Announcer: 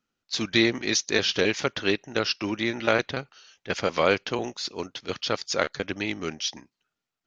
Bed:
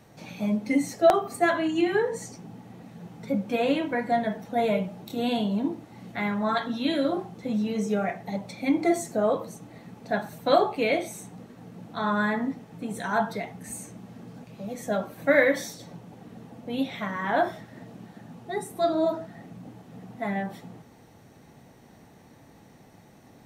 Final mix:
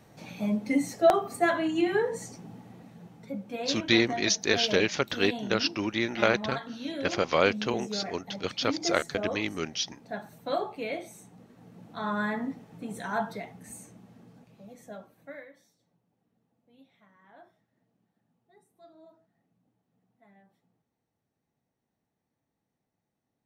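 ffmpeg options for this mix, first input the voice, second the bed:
ffmpeg -i stem1.wav -i stem2.wav -filter_complex "[0:a]adelay=3350,volume=-1.5dB[link_01];[1:a]volume=3dB,afade=type=out:start_time=2.53:duration=0.8:silence=0.421697,afade=type=in:start_time=11.31:duration=0.92:silence=0.562341,afade=type=out:start_time=13.06:duration=2.43:silence=0.0501187[link_02];[link_01][link_02]amix=inputs=2:normalize=0" out.wav

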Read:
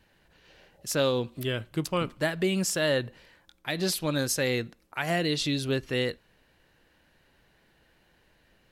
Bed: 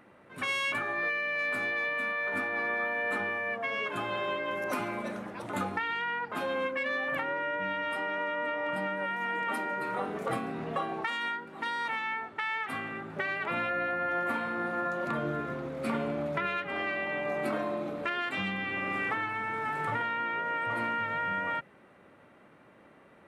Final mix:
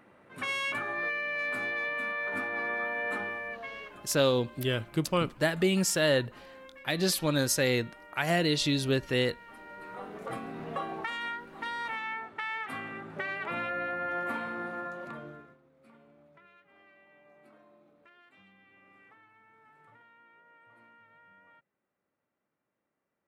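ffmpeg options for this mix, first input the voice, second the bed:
ffmpeg -i stem1.wav -i stem2.wav -filter_complex "[0:a]adelay=3200,volume=0.5dB[link_01];[1:a]volume=15dB,afade=type=out:start_time=3.09:duration=0.95:silence=0.133352,afade=type=in:start_time=9.51:duration=1.28:silence=0.149624,afade=type=out:start_time=14.42:duration=1.16:silence=0.0562341[link_02];[link_01][link_02]amix=inputs=2:normalize=0" out.wav

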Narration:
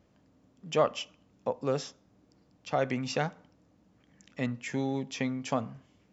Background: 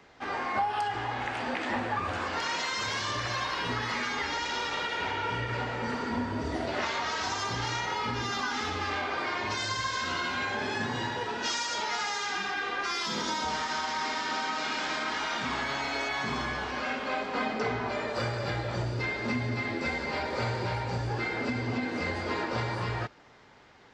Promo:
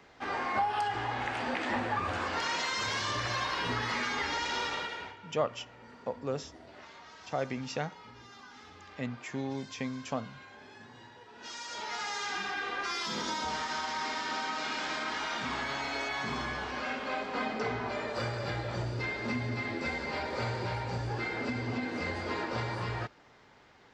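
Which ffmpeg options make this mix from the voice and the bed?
ffmpeg -i stem1.wav -i stem2.wav -filter_complex "[0:a]adelay=4600,volume=-4.5dB[link_01];[1:a]volume=16dB,afade=type=out:start_time=4.64:duration=0.53:silence=0.112202,afade=type=in:start_time=11.31:duration=0.91:silence=0.141254[link_02];[link_01][link_02]amix=inputs=2:normalize=0" out.wav

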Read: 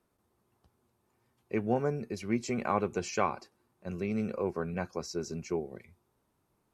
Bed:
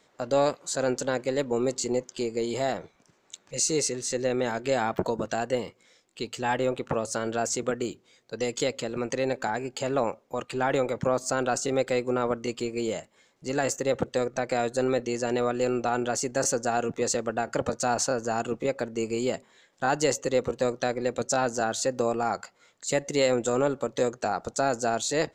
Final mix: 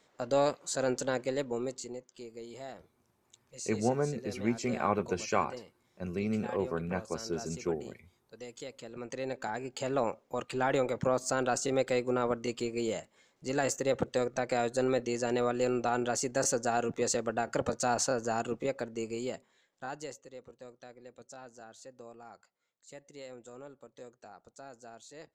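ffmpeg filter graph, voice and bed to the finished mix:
ffmpeg -i stem1.wav -i stem2.wav -filter_complex "[0:a]adelay=2150,volume=0dB[link_01];[1:a]volume=9dB,afade=type=out:start_time=1.19:duration=0.79:silence=0.237137,afade=type=in:start_time=8.7:duration=1.44:silence=0.223872,afade=type=out:start_time=18.26:duration=2:silence=0.1[link_02];[link_01][link_02]amix=inputs=2:normalize=0" out.wav

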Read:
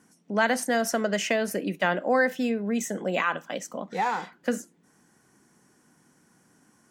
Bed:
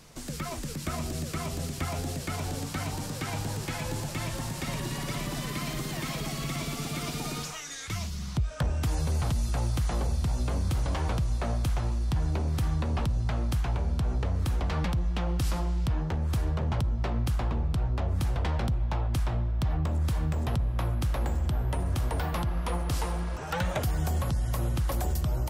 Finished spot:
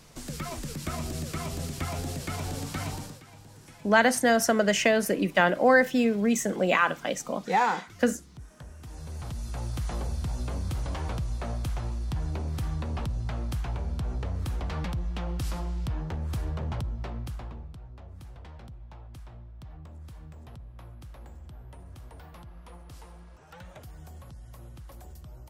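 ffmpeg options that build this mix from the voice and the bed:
ffmpeg -i stem1.wav -i stem2.wav -filter_complex "[0:a]adelay=3550,volume=3dB[link_01];[1:a]volume=13.5dB,afade=type=out:start_time=2.9:duration=0.32:silence=0.141254,afade=type=in:start_time=8.81:duration=1.08:silence=0.199526,afade=type=out:start_time=16.68:duration=1.11:silence=0.199526[link_02];[link_01][link_02]amix=inputs=2:normalize=0" out.wav

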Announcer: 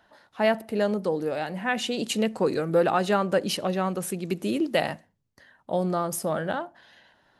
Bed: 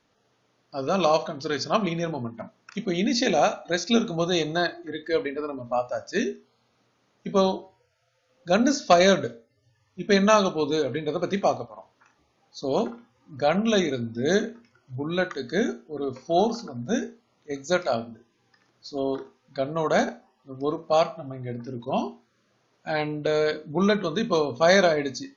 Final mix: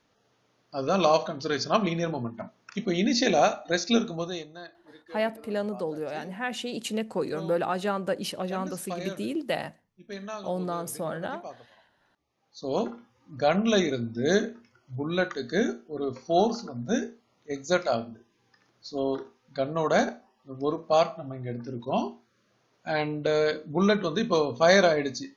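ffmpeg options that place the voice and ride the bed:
ffmpeg -i stem1.wav -i stem2.wav -filter_complex "[0:a]adelay=4750,volume=-5dB[link_01];[1:a]volume=17.5dB,afade=type=out:start_time=3.85:duration=0.63:silence=0.11885,afade=type=in:start_time=12.12:duration=0.87:silence=0.125893[link_02];[link_01][link_02]amix=inputs=2:normalize=0" out.wav

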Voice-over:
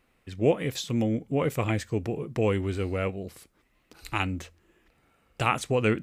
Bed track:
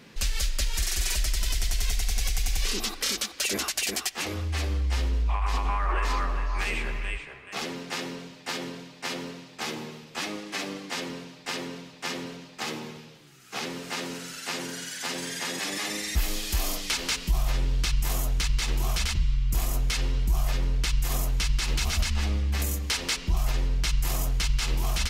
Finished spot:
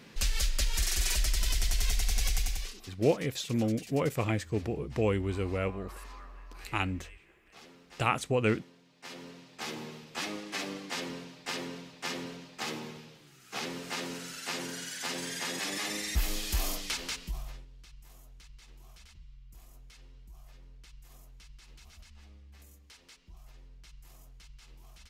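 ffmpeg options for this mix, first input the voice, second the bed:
ffmpeg -i stem1.wav -i stem2.wav -filter_complex "[0:a]adelay=2600,volume=-3dB[link_01];[1:a]volume=15dB,afade=type=out:start_time=2.36:duration=0.38:silence=0.11885,afade=type=in:start_time=8.82:duration=1.14:silence=0.141254,afade=type=out:start_time=16.62:duration=1.04:silence=0.0630957[link_02];[link_01][link_02]amix=inputs=2:normalize=0" out.wav

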